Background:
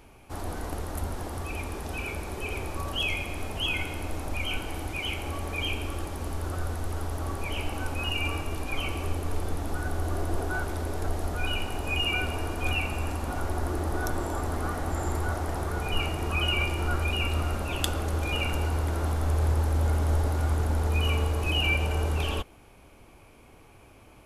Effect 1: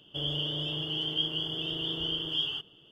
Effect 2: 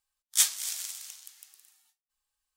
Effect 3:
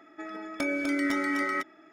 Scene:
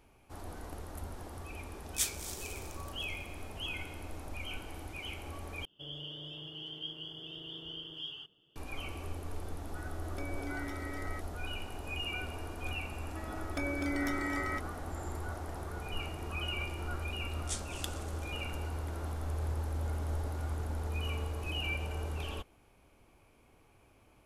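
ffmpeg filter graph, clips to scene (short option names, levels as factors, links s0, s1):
-filter_complex "[2:a]asplit=2[s0][s1];[3:a]asplit=2[s2][s3];[0:a]volume=0.299[s4];[s1]aresample=22050,aresample=44100[s5];[s4]asplit=2[s6][s7];[s6]atrim=end=5.654[s8];[1:a]atrim=end=2.91,asetpts=PTS-STARTPTS,volume=0.251[s9];[s7]atrim=start=8.556[s10];[s0]atrim=end=2.56,asetpts=PTS-STARTPTS,volume=0.335,afade=t=in:d=0.004:c=hsin,afade=t=out:st=2.556:d=0.004:c=hsin,adelay=1610[s11];[s2]atrim=end=1.92,asetpts=PTS-STARTPTS,volume=0.168,afade=t=in:d=0.004:c=hsin,afade=t=out:st=1.916:d=0.004:c=hsin,adelay=9580[s12];[s3]atrim=end=1.92,asetpts=PTS-STARTPTS,volume=0.447,afade=t=in:d=0.004:c=hsin,afade=t=out:st=1.916:d=0.004:c=hsin,adelay=12970[s13];[s5]atrim=end=2.56,asetpts=PTS-STARTPTS,volume=0.158,afade=t=in:d=0.004:c=hsin,afade=t=out:st=2.556:d=0.004:c=hsin,adelay=17120[s14];[s8][s9]acrossfade=d=0.004:c1=hsin:c2=hsin[s15];[s15][s10]acrossfade=d=0.004:c1=hsin:c2=hsin[s16];[s16][s11][s12][s13][s14]amix=inputs=5:normalize=0"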